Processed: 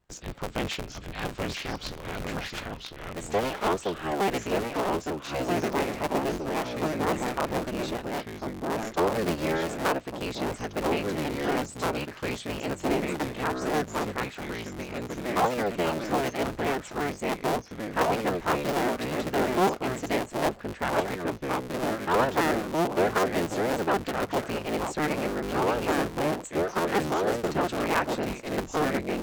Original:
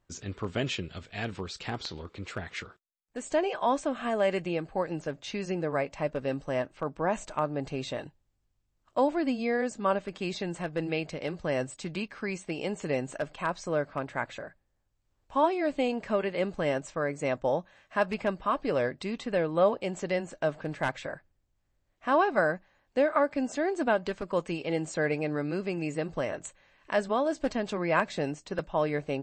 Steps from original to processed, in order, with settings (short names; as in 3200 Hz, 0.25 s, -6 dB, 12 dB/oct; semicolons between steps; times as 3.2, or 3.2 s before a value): cycle switcher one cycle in 3, inverted; vibrato 1.7 Hz 16 cents; echoes that change speed 0.768 s, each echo -2 st, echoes 2